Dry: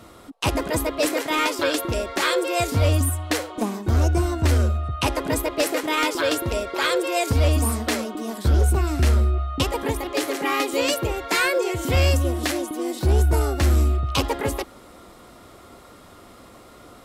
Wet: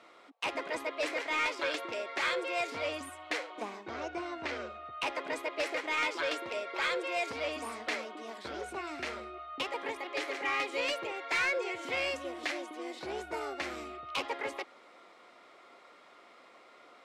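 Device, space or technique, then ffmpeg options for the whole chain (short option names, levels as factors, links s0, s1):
intercom: -filter_complex "[0:a]asettb=1/sr,asplit=3[s0][s1][s2];[s0]atrim=end=3.834[s3];[s1]atrim=start=3.83:end=4.93,asetpts=PTS-STARTPTS,afade=t=in:d=0.004:c=qsin,afade=t=out:st=1.096:d=0.004:c=qsin,lowpass=5500[s4];[s2]atrim=start=4.926[s5];[s3][s4]acrossfade=d=0.004:c1=hsin:c2=qsin[s6];[s6][s5]acrossfade=d=0.004:c1=qsin:c2=hsin,highpass=480,lowpass=4600,equalizer=f=2200:t=o:w=0.46:g=7,asoftclip=type=tanh:threshold=0.188,volume=0.376"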